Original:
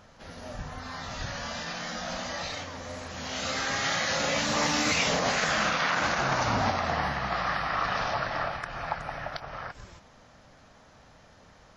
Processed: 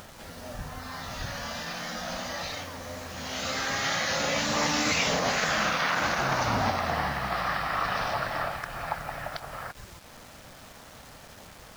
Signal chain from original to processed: upward compressor, threshold -41 dBFS; word length cut 8-bit, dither none

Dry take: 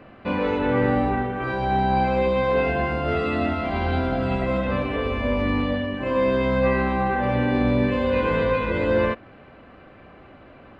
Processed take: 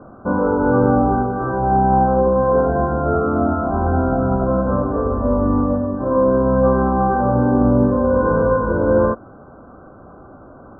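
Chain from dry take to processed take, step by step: Chebyshev low-pass 1.5 kHz, order 8; trim +6.5 dB

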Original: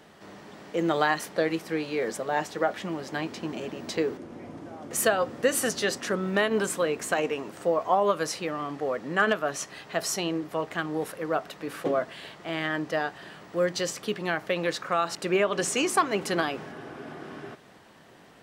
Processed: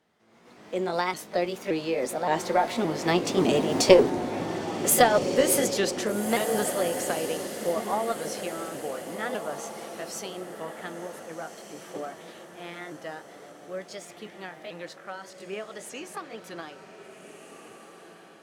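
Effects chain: sawtooth pitch modulation +3 st, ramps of 582 ms; Doppler pass-by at 3.86 s, 8 m/s, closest 3.9 m; dynamic bell 1.7 kHz, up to -6 dB, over -54 dBFS, Q 1; level rider gain up to 15.5 dB; echo that smears into a reverb 1594 ms, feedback 41%, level -9 dB; Chebyshev shaper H 2 -15 dB, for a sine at -2 dBFS

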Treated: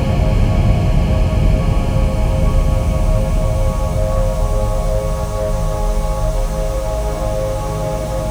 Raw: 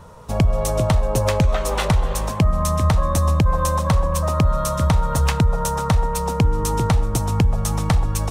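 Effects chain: Paulstretch 30×, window 0.50 s, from 0.42 s; slew-rate limiter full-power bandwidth 77 Hz; trim +2.5 dB

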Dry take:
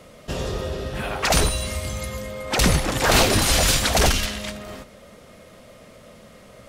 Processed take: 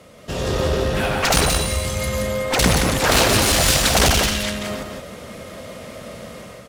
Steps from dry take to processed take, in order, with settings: high-pass 46 Hz; level rider gain up to 10 dB; one-sided clip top -21 dBFS; on a send: delay 174 ms -5 dB

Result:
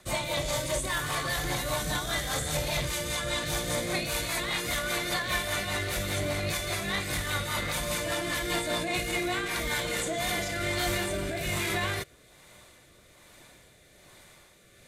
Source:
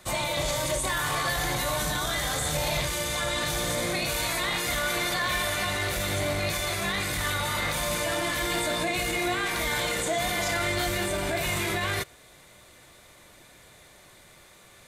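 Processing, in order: rotary cabinet horn 5 Hz, later 1.2 Hz, at 9.68 s

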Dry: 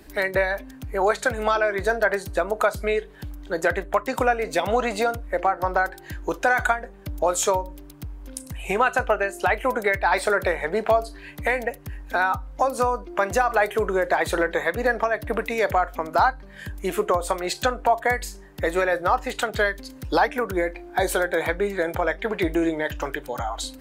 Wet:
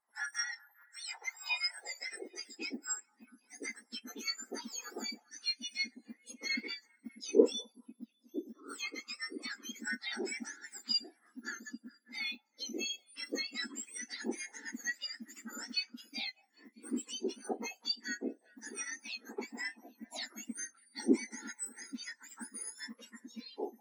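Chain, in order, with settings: spectrum inverted on a logarithmic axis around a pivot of 1.8 kHz; on a send: repeats whose band climbs or falls 200 ms, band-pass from 810 Hz, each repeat 0.7 oct, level -11.5 dB; on the sum: high-pass sweep 1 kHz -> 230 Hz, 1.28–2.84 s; spectral contrast expander 1.5:1; trim -6.5 dB

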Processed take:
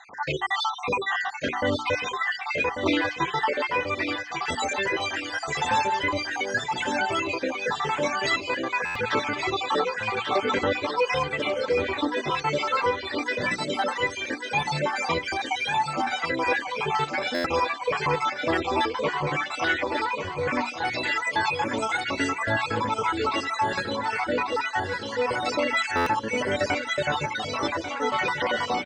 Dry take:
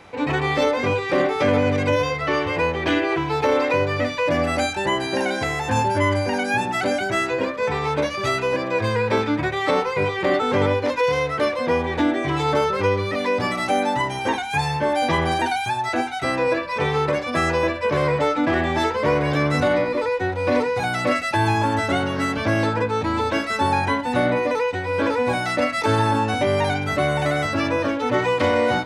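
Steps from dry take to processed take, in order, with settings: random holes in the spectrogram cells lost 62%; flange 0.44 Hz, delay 0.4 ms, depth 5.5 ms, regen -25%; dynamic bell 620 Hz, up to -4 dB, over -39 dBFS, Q 2.2; Chebyshev low-pass 7.9 kHz, order 4; bass shelf 270 Hz -11 dB; in parallel at +2 dB: peak limiter -24 dBFS, peak gain reduction 7 dB; on the sum: hum notches 60/120/180/240/300/360/420 Hz; on a send: feedback delay 1142 ms, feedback 48%, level -7.5 dB; on the sum: buffer glitch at 8.85/17.34/25.96 s, samples 512, times 8; random flutter of the level, depth 55%; trim +2.5 dB

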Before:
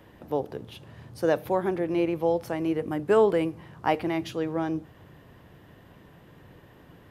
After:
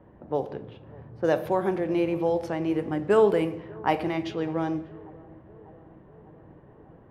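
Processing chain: tape echo 596 ms, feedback 74%, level -22.5 dB, low-pass 2.1 kHz; on a send at -10.5 dB: reverberation RT60 0.90 s, pre-delay 5 ms; on the sum: level-controlled noise filter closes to 950 Hz, open at -21 dBFS

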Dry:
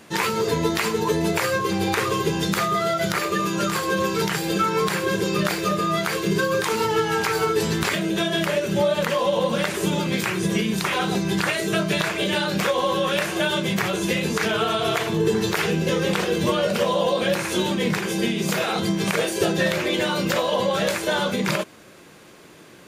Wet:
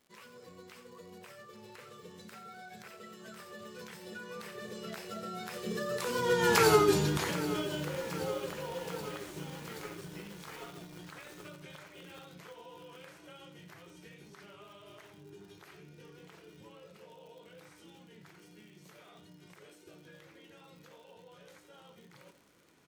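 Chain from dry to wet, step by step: Doppler pass-by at 6.65 s, 33 m/s, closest 5.6 m; dynamic bell 2 kHz, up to -4 dB, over -46 dBFS, Q 0.85; reverse; upward compressor, threshold -51 dBFS; reverse; crackle 100 per s -52 dBFS; on a send: delay 87 ms -12.5 dB; on the sum: bit-crushed delay 775 ms, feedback 80%, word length 7-bit, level -13.5 dB; trim +1 dB

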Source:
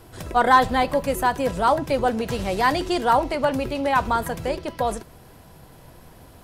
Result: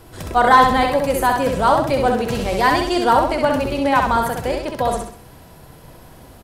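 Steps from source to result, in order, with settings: feedback delay 65 ms, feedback 41%, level -4 dB; trim +3 dB

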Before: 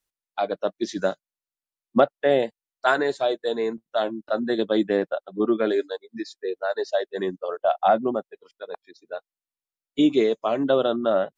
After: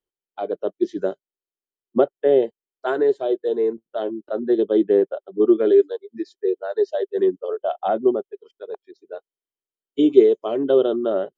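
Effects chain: treble shelf 2.3 kHz -11.5 dB, from 5.41 s -6 dB; small resonant body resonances 390/3100 Hz, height 16 dB, ringing for 30 ms; trim -5.5 dB

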